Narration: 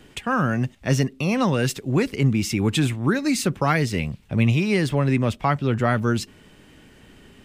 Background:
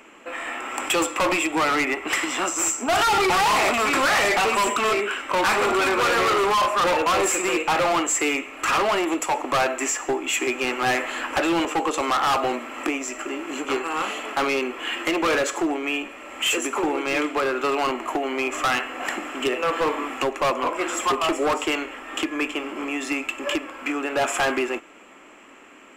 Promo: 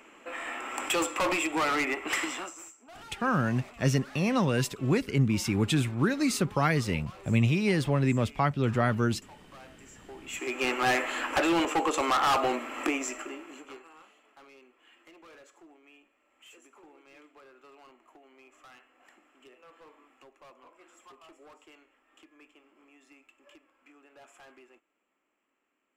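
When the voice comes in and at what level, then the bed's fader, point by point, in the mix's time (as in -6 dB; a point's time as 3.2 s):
2.95 s, -5.0 dB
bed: 2.27 s -6 dB
2.75 s -29.5 dB
9.92 s -29.5 dB
10.64 s -3.5 dB
13.06 s -3.5 dB
14.11 s -32 dB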